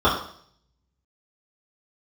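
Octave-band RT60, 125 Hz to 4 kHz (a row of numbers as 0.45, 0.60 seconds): 1.0, 0.60, 0.60, 0.55, 0.55, 0.65 seconds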